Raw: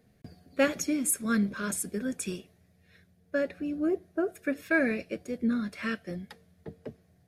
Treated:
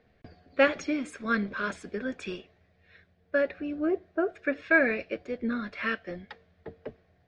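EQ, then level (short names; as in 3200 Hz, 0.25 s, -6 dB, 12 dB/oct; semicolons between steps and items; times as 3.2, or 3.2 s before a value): LPF 4000 Hz 12 dB/oct; air absorption 120 m; bell 160 Hz -12.5 dB 2.1 oct; +6.5 dB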